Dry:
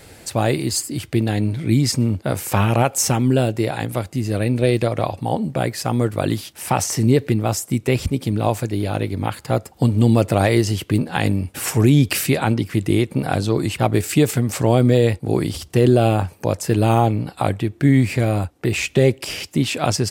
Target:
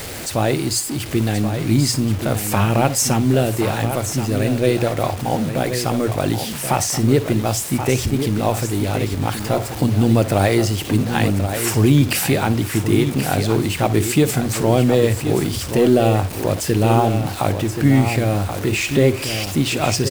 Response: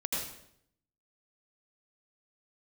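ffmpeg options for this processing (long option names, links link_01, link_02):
-filter_complex "[0:a]aeval=exprs='val(0)+0.5*0.0473*sgn(val(0))':channel_layout=same,bandreject=frequency=60:width_type=h:width=6,bandreject=frequency=120:width_type=h:width=6,bandreject=frequency=180:width_type=h:width=6,acrusher=bits=5:mix=0:aa=0.000001,aecho=1:1:1079:0.376,asplit=2[link_01][link_02];[1:a]atrim=start_sample=2205,atrim=end_sample=3969,asetrate=61740,aresample=44100[link_03];[link_02][link_03]afir=irnorm=-1:irlink=0,volume=-10.5dB[link_04];[link_01][link_04]amix=inputs=2:normalize=0,volume=-2dB"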